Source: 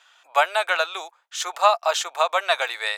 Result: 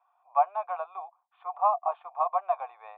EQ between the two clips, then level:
formant resonators in series a
low-shelf EQ 330 Hz −9 dB
notch filter 670 Hz, Q 17
+5.0 dB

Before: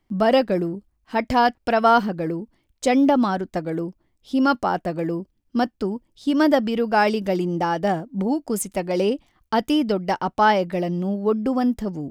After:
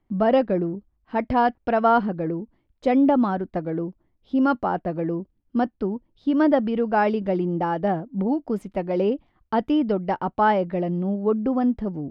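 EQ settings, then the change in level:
high-frequency loss of the air 350 metres
parametric band 2,500 Hz −3 dB 1.8 octaves
0.0 dB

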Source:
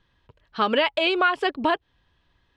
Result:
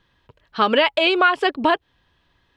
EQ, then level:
low-shelf EQ 92 Hz −6 dB
+4.5 dB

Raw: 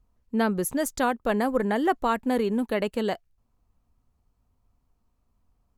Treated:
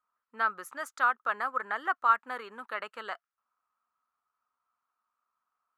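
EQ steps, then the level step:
resonant band-pass 1,300 Hz, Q 5.9
spectral tilt +3 dB per octave
+8.0 dB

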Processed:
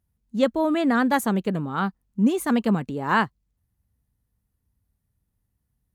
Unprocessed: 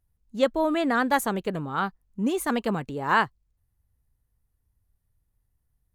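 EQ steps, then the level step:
high-pass filter 44 Hz
parametric band 210 Hz +8 dB 0.94 octaves
0.0 dB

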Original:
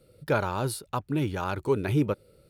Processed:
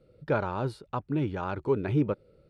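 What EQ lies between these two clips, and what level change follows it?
head-to-tape spacing loss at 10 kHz 24 dB
parametric band 95 Hz −3 dB 0.77 octaves
0.0 dB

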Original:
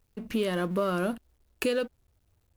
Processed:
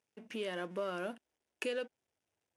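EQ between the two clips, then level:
loudspeaker in its box 190–9,000 Hz, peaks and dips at 1,200 Hz −7 dB, 4,200 Hz −9 dB, 7,500 Hz −5 dB
low-shelf EQ 360 Hz −11 dB
−5.0 dB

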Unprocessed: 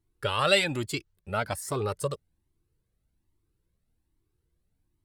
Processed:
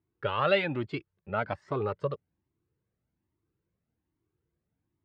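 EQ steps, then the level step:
band-pass filter 110–2,600 Hz
high-frequency loss of the air 170 metres
0.0 dB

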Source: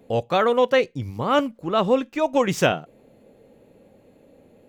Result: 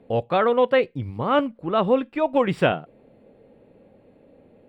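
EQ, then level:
moving average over 7 samples
0.0 dB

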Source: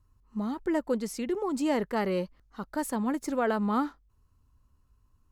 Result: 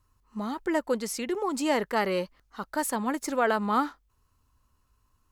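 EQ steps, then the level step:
low-shelf EQ 430 Hz −11 dB
+6.5 dB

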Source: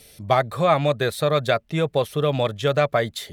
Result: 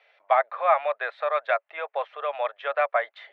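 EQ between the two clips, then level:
Butterworth high-pass 630 Hz 36 dB per octave
low-pass filter 2,300 Hz 24 dB per octave
0.0 dB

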